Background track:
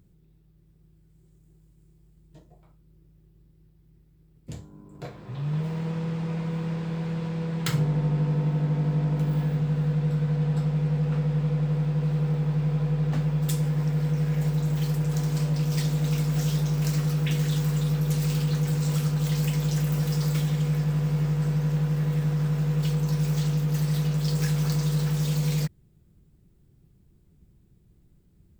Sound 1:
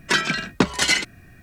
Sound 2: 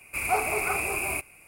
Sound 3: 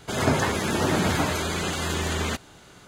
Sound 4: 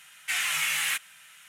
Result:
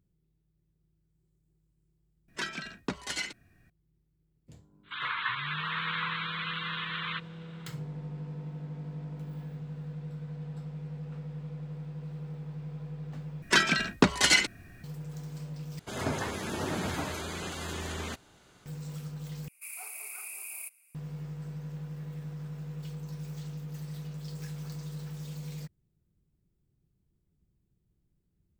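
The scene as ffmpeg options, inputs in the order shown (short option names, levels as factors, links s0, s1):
-filter_complex "[1:a]asplit=2[s0][s1];[3:a]asplit=2[s2][s3];[0:a]volume=0.178[s4];[s2]asuperpass=centerf=2000:order=20:qfactor=0.68[s5];[2:a]aderivative[s6];[s4]asplit=4[s7][s8][s9][s10];[s7]atrim=end=13.424[s11];[s1]atrim=end=1.42,asetpts=PTS-STARTPTS,volume=0.708[s12];[s8]atrim=start=14.836:end=15.794[s13];[s3]atrim=end=2.87,asetpts=PTS-STARTPTS,volume=0.316[s14];[s9]atrim=start=18.656:end=19.484[s15];[s6]atrim=end=1.47,asetpts=PTS-STARTPTS,volume=0.398[s16];[s10]atrim=start=20.946[s17];[s0]atrim=end=1.42,asetpts=PTS-STARTPTS,volume=0.168,afade=t=in:d=0.004:c=hsin,afade=t=out:st=1.416:d=0.004:c=hsin,adelay=2280[s18];[s5]atrim=end=2.87,asetpts=PTS-STARTPTS,volume=0.708,afade=t=in:d=0.05,afade=t=out:st=2.82:d=0.05,adelay=4830[s19];[s11][s12]acrossfade=d=0.004:c1=hsin:c2=hsin[s20];[s20][s13]acrossfade=d=0.004:c1=hsin:c2=hsin[s21];[s21][s14]acrossfade=d=0.004:c1=hsin:c2=hsin[s22];[s22][s15]acrossfade=d=0.004:c1=hsin:c2=hsin[s23];[s23][s16]acrossfade=d=0.004:c1=hsin:c2=hsin[s24];[s24][s17]acrossfade=d=0.004:c1=hsin:c2=hsin[s25];[s25][s18][s19]amix=inputs=3:normalize=0"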